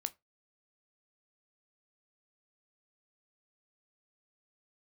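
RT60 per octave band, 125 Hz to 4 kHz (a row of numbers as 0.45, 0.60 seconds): 0.25, 0.15, 0.20, 0.20, 0.20, 0.15 seconds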